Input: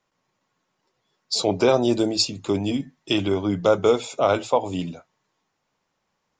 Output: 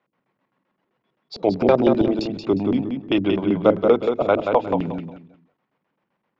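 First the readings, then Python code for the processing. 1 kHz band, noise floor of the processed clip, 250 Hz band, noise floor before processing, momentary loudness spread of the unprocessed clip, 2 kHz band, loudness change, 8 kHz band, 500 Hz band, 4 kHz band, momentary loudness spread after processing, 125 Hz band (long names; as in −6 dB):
+1.5 dB, −77 dBFS, +4.0 dB, −76 dBFS, 8 LU, 0.0 dB, +2.0 dB, below −20 dB, +2.0 dB, −9.0 dB, 8 LU, +1.0 dB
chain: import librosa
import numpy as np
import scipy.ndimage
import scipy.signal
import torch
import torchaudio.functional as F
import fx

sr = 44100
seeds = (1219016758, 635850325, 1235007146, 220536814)

p1 = scipy.signal.sosfilt(scipy.signal.butter(2, 170.0, 'highpass', fs=sr, output='sos'), x)
p2 = fx.peak_eq(p1, sr, hz=1500.0, db=-3.0, octaves=2.6)
p3 = fx.filter_lfo_lowpass(p2, sr, shape='square', hz=7.7, low_hz=250.0, high_hz=2400.0, q=1.0)
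p4 = fx.air_absorb(p3, sr, metres=120.0)
p5 = p4 + fx.echo_feedback(p4, sr, ms=179, feedback_pct=25, wet_db=-5.5, dry=0)
y = p5 * librosa.db_to_amplitude(5.0)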